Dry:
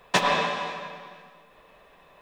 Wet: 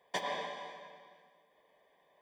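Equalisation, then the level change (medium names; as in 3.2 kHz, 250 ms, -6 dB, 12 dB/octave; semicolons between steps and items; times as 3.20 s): boxcar filter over 33 samples; differentiator; +12.5 dB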